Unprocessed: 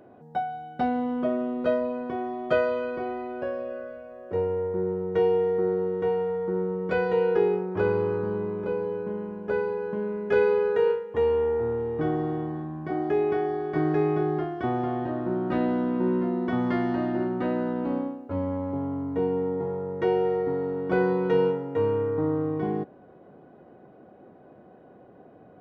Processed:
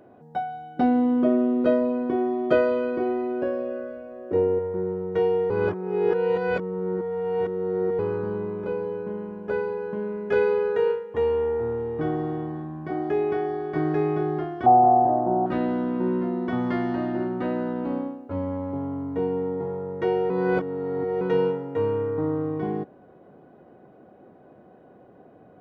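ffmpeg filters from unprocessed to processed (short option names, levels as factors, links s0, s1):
-filter_complex "[0:a]asettb=1/sr,asplit=3[s0][s1][s2];[s0]atrim=end=0.774[s3];[s1]atrim=start=0.77:end=4.59,asetpts=PTS-STARTPTS,afade=t=in:d=0.004:c=qsin,afade=t=out:st=3.816:d=0.004:c=qsin,equalizer=f=310:t=o:w=0.86:g=12.5[s4];[s2]atrim=start=4.586[s5];[s3][s4]acrossfade=d=0.004:c1=hsin:c2=qsin[s6];[s6][s5]acrossfade=d=0.004:c1=qsin:c2=hsin,asettb=1/sr,asplit=3[s7][s8][s9];[s7]atrim=end=14.664[s10];[s8]atrim=start=14.66:end=15.46,asetpts=PTS-STARTPTS,afade=t=in:d=0.004:c=qsin,afade=t=out:st=0.796:d=0.004:c=qsin,lowpass=f=770:t=q:w=9.5[s11];[s9]atrim=start=15.456[s12];[s10][s11]acrossfade=d=0.004:c1=hsin:c2=qsin[s13];[s13][s12]acrossfade=d=0.004:c1=qsin:c2=hsin,asplit=5[s14][s15][s16][s17][s18];[s14]atrim=end=5.502[s19];[s15]atrim=start=5.498:end=7.992,asetpts=PTS-STARTPTS,areverse[s20];[s16]atrim=start=7.988:end=20.302[s21];[s17]atrim=start=20.298:end=21.212,asetpts=PTS-STARTPTS,areverse[s22];[s18]atrim=start=21.208[s23];[s19][s20]acrossfade=d=0.004:c1=hsin:c2=hsin[s24];[s24][s21]acrossfade=d=0.004:c1=hsin:c2=hsin[s25];[s25][s22]acrossfade=d=0.004:c1=hsin:c2=hsin[s26];[s26][s23]acrossfade=d=0.004:c1=hsin:c2=hsin"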